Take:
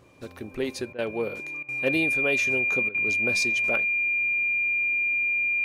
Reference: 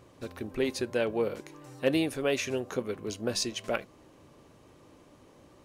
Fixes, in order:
notch filter 2,400 Hz, Q 30
repair the gap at 0:00.93/0:01.63/0:02.89, 54 ms

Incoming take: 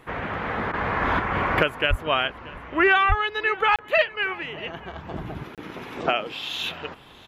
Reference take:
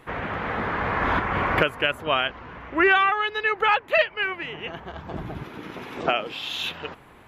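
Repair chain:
0:01.89–0:02.01: high-pass filter 140 Hz 24 dB per octave
0:03.08–0:03.20: high-pass filter 140 Hz 24 dB per octave
repair the gap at 0:03.76/0:05.55, 27 ms
repair the gap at 0:00.72, 14 ms
echo removal 633 ms −21.5 dB

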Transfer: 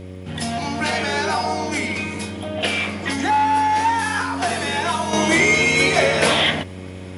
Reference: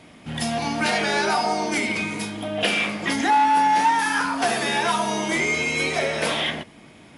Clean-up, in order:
click removal
hum removal 92.5 Hz, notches 6
level 0 dB, from 0:05.13 −7 dB

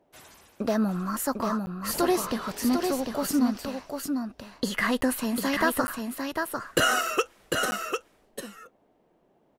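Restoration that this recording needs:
clipped peaks rebuilt −11 dBFS
repair the gap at 0:01.66/0:05.01/0:05.87/0:07.71, 10 ms
echo removal 749 ms −5 dB

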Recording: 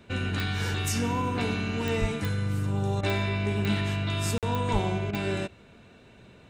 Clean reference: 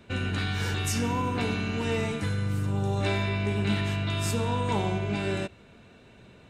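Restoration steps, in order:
click removal
high-pass at the plosives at 0:02.00/0:04.72
repair the gap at 0:04.38, 47 ms
repair the gap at 0:03.01/0:05.11, 20 ms

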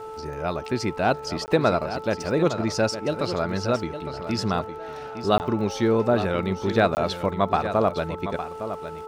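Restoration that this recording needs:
click removal
hum removal 438.2 Hz, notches 3
repair the gap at 0:01.46/0:05.38/0:06.95, 19 ms
echo removal 860 ms −10.5 dB

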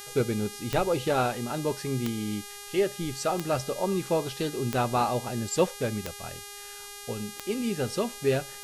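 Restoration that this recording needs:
click removal
hum removal 407.3 Hz, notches 31
downward expander −35 dBFS, range −21 dB

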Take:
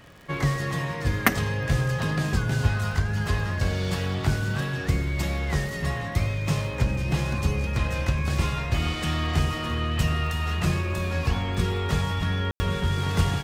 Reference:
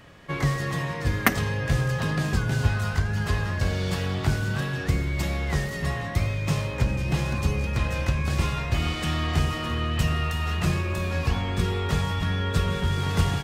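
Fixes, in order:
click removal
ambience match 0:12.51–0:12.60

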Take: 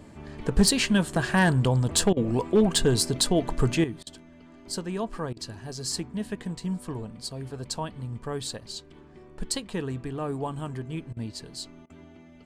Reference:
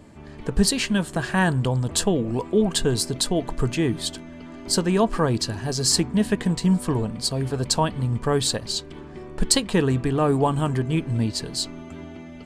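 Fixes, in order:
clipped peaks rebuilt −13 dBFS
repair the gap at 0:02.13/0:04.03/0:05.33/0:11.13/0:11.86, 36 ms
level correction +11 dB, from 0:03.84

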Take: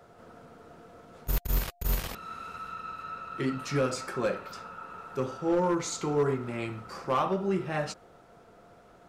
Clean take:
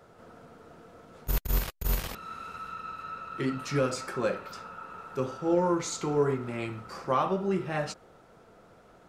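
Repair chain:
clipped peaks rebuilt −20 dBFS
notch filter 700 Hz, Q 30

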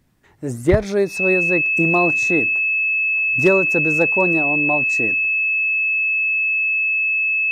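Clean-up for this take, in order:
clipped peaks rebuilt −6 dBFS
notch filter 2,600 Hz, Q 30

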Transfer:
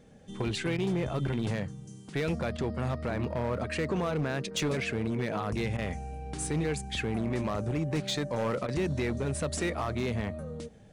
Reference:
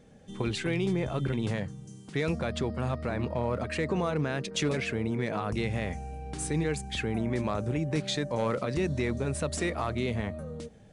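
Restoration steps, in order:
clipped peaks rebuilt −24.5 dBFS
repair the gap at 0:00.77/0:02.57/0:05.77/0:08.67, 12 ms

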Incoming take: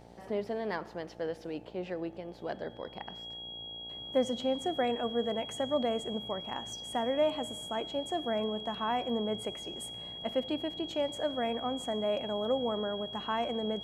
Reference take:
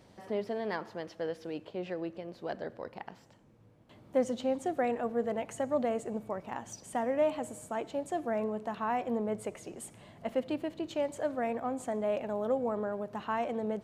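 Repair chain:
hum removal 58.2 Hz, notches 15
notch filter 3,300 Hz, Q 30

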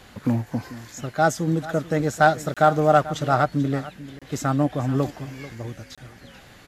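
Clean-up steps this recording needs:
clipped peaks rebuilt −5.5 dBFS
repair the gap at 0:02.54/0:04.19/0:05.95, 26 ms
echo removal 439 ms −16.5 dB

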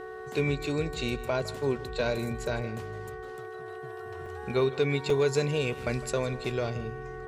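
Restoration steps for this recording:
hum removal 372.6 Hz, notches 5
notch filter 440 Hz, Q 30
repair the gap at 0:04.26/0:05.10, 3.2 ms
echo removal 158 ms −17.5 dB

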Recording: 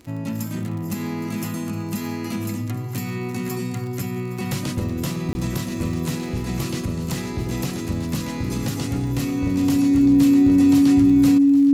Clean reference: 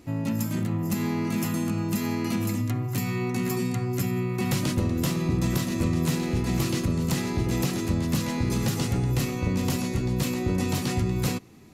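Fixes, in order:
click removal
notch filter 280 Hz, Q 30
repair the gap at 0:05.33, 20 ms
echo removal 815 ms −16.5 dB

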